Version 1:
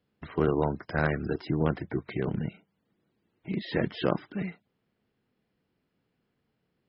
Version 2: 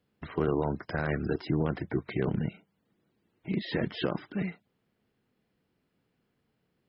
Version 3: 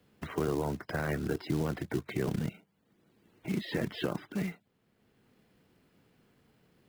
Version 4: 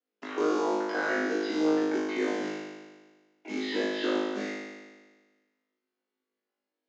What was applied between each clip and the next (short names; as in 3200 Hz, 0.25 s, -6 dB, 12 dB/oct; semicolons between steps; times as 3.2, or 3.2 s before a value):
limiter -18.5 dBFS, peak gain reduction 8.5 dB; gain +1 dB
short-mantissa float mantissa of 2-bit; three-band squash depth 40%; gain -2.5 dB
gate -60 dBFS, range -25 dB; Chebyshev band-pass 240–6800 Hz, order 5; flutter echo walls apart 3.3 m, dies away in 1.4 s